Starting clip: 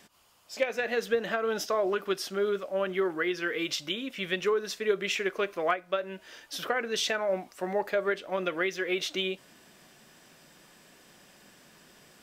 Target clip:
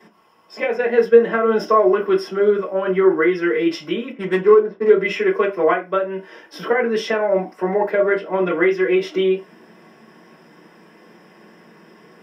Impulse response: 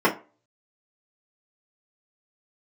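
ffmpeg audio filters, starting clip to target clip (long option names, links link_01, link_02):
-filter_complex "[0:a]asettb=1/sr,asplit=3[link_01][link_02][link_03];[link_01]atrim=end=0.774[link_04];[link_02]atrim=start=0.77:end=1.5,asetpts=PTS-STARTPTS,afade=type=in:duration=0.004:curve=qsin,afade=type=out:start_time=0.726:duration=0.004:curve=qsin,agate=range=-33dB:threshold=-30dB:ratio=3:detection=peak[link_05];[link_03]atrim=start=1.496[link_06];[link_04][link_05]acrossfade=duration=0.004:curve1=hsin:curve2=qsin[link_07];[link_07][link_06]acrossfade=duration=0.004:curve1=qsin:curve2=hsin,asettb=1/sr,asplit=3[link_08][link_09][link_10];[link_08]atrim=end=4.114[link_11];[link_09]atrim=start=4.11:end=4.89,asetpts=PTS-STARTPTS,afade=type=in:duration=0.004:curve=qsin,afade=type=out:start_time=0.776:duration=0.004:curve=qsin,adynamicsmooth=sensitivity=3:basefreq=510[link_12];[link_10]atrim=start=4.886[link_13];[link_11][link_12]acrossfade=duration=0.004:curve1=hsin:curve2=qsin[link_14];[link_14][link_13]acrossfade=duration=0.004:curve1=qsin:curve2=hsin[link_15];[1:a]atrim=start_sample=2205,afade=type=out:start_time=0.16:duration=0.01,atrim=end_sample=7497[link_16];[link_15][link_16]afir=irnorm=-1:irlink=0,volume=-9dB"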